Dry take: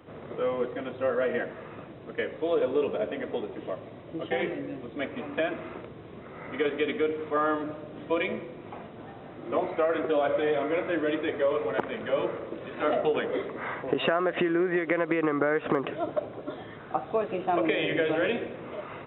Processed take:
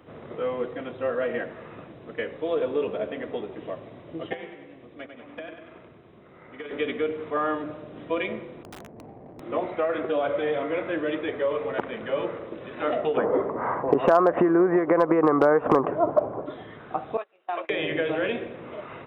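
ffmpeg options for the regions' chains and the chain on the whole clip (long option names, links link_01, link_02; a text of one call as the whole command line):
ffmpeg -i in.wav -filter_complex "[0:a]asettb=1/sr,asplit=3[link_01][link_02][link_03];[link_01]atrim=end=4.334[link_04];[link_02]atrim=start=4.33:end=6.71,asetpts=PTS-STARTPTS,afade=type=in:duration=0.004:curve=qsin,afade=type=out:start_time=2.376:duration=0.004:curve=qsin,agate=range=-9dB:threshold=-33dB:ratio=16:release=100:detection=peak,acrossover=split=600|1500[link_05][link_06][link_07];[link_05]acompressor=threshold=-43dB:ratio=4[link_08];[link_06]acompressor=threshold=-46dB:ratio=4[link_09];[link_07]acompressor=threshold=-47dB:ratio=4[link_10];[link_08][link_09][link_10]amix=inputs=3:normalize=0,aecho=1:1:97|194|291|388|485|582|679:0.447|0.246|0.135|0.0743|0.0409|0.0225|0.0124,atrim=end_sample=104958[link_11];[link_03]atrim=start=6.706[link_12];[link_04][link_11]acrossfade=duration=0.004:curve1=hsin:curve2=qsin[link_13];[link_13][link_12]acrossfade=duration=0.004:curve1=qsin:curve2=hsin,asettb=1/sr,asplit=3[link_14][link_15][link_16];[link_14]atrim=end=8.634[link_17];[link_15]atrim=start=8.63:end=9.4,asetpts=PTS-STARTPTS,afade=type=in:duration=0.004:curve=qsin,afade=type=out:start_time=0.766:duration=0.004:curve=qsin,lowpass=frequency=1000:width=0.5412,lowpass=frequency=1000:width=1.3066,adynamicsmooth=sensitivity=7:basefreq=590,aeval=exprs='(mod(56.2*val(0)+1,2)-1)/56.2':channel_layout=same[link_18];[link_16]atrim=start=9.396[link_19];[link_17][link_18]acrossfade=duration=0.004:curve1=hsin:curve2=qsin[link_20];[link_20][link_19]acrossfade=duration=0.004:curve1=qsin:curve2=hsin,asettb=1/sr,asplit=3[link_21][link_22][link_23];[link_21]atrim=end=13.174[link_24];[link_22]atrim=start=13.17:end=16.46,asetpts=PTS-STARTPTS,afade=type=in:duration=0.004:curve=qsin,afade=type=out:start_time=3.286:duration=0.004:curve=qsin,acontrast=27,lowpass=frequency=980:width_type=q:width=2.1,asoftclip=type=hard:threshold=-8dB[link_25];[link_23]atrim=start=16.456[link_26];[link_24][link_25]acrossfade=duration=0.004:curve1=hsin:curve2=qsin[link_27];[link_27][link_26]acrossfade=duration=0.004:curve1=qsin:curve2=hsin,asettb=1/sr,asplit=3[link_28][link_29][link_30];[link_28]atrim=end=17.174[link_31];[link_29]atrim=start=17.17:end=17.7,asetpts=PTS-STARTPTS,afade=type=in:duration=0.004:curve=qsin,afade=type=out:start_time=0.526:duration=0.004:curve=qsin,highpass=750,agate=range=-24dB:threshold=-34dB:ratio=16:release=100:detection=peak[link_32];[link_30]atrim=start=17.696[link_33];[link_31][link_32]acrossfade=duration=0.004:curve1=hsin:curve2=qsin[link_34];[link_34][link_33]acrossfade=duration=0.004:curve1=qsin:curve2=hsin" out.wav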